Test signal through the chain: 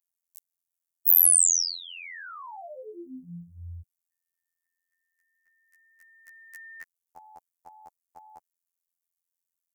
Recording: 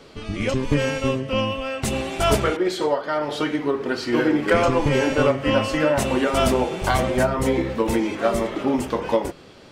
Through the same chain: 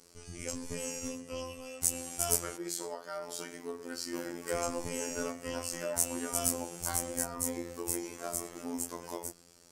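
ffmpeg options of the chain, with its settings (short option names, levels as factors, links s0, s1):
-af "aexciter=amount=13.6:drive=2.7:freq=5300,afftfilt=real='hypot(re,im)*cos(PI*b)':imag='0':win_size=2048:overlap=0.75,volume=0.188"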